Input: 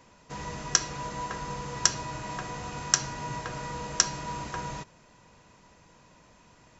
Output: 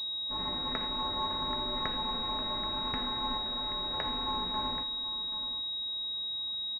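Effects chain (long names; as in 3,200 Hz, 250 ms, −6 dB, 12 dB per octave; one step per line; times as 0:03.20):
ring modulation 110 Hz
0:03.37–0:03.94: hard clipping −39 dBFS, distortion −20 dB
harmonic and percussive parts rebalanced percussive −15 dB
on a send: single-tap delay 780 ms −13 dB
on the sum: switching amplifier with a slow clock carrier 3,800 Hz
level +4.5 dB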